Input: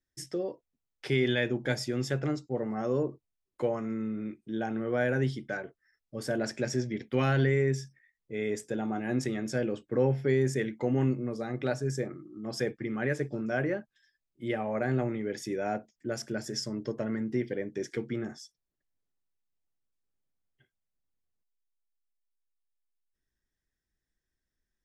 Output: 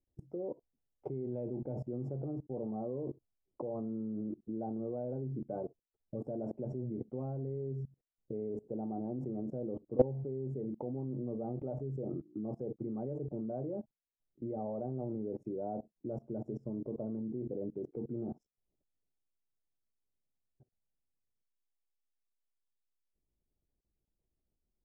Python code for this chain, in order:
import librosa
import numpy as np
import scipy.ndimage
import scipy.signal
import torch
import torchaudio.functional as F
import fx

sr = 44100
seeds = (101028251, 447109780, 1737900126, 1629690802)

y = scipy.signal.sosfilt(scipy.signal.cheby2(4, 40, 1600.0, 'lowpass', fs=sr, output='sos'), x)
y = fx.level_steps(y, sr, step_db=23)
y = y * 10.0 ** (8.0 / 20.0)